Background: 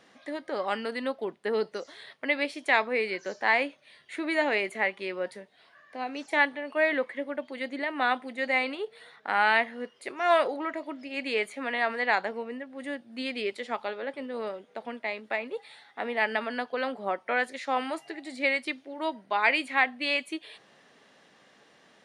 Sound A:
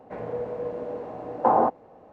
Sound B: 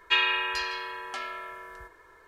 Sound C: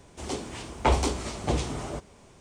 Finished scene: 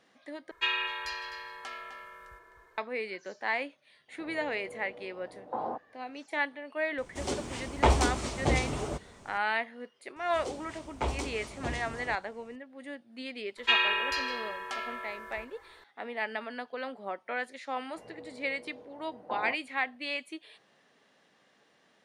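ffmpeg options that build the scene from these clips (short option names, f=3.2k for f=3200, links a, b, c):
-filter_complex "[2:a]asplit=2[a][b];[1:a]asplit=2[c][d];[3:a]asplit=2[e][f];[0:a]volume=-7dB[g];[a]asplit=2[h][i];[i]adelay=256.6,volume=-8dB,highshelf=f=4k:g=-5.77[j];[h][j]amix=inputs=2:normalize=0[k];[g]asplit=2[l][m];[l]atrim=end=0.514[n];[k]atrim=end=2.27,asetpts=PTS-STARTPTS,volume=-6dB[o];[m]atrim=start=2.776[p];[c]atrim=end=2.12,asetpts=PTS-STARTPTS,volume=-15dB,afade=t=in:d=0.004:c=hsin,afade=t=out:st=2.116:d=0.004:c=hsin,adelay=4080[q];[e]atrim=end=2.4,asetpts=PTS-STARTPTS,volume=-0.5dB,afade=t=in:d=0.004:c=hsin,afade=t=out:st=2.396:d=0.004:c=hsin,adelay=307818S[r];[f]atrim=end=2.4,asetpts=PTS-STARTPTS,volume=-9.5dB,afade=t=in:d=0.004:c=hsin,afade=t=out:st=2.396:d=0.004:c=hsin,adelay=10160[s];[b]atrim=end=2.27,asetpts=PTS-STARTPTS,volume=-1dB,afade=t=in:d=0.004:c=hsin,afade=t=out:st=2.266:d=0.004:c=hsin,adelay=13570[t];[d]atrim=end=2.12,asetpts=PTS-STARTPTS,volume=-17.5dB,afade=t=in:d=0.004:c=hsin,afade=t=out:st=2.116:d=0.004:c=hsin,adelay=17850[u];[n][o]acrossfade=d=0.004:c1=hsin:c2=hsin[v];[v][p]acrossfade=d=0.004:c1=hsin:c2=hsin[w];[w][q][r][s][t][u]amix=inputs=6:normalize=0"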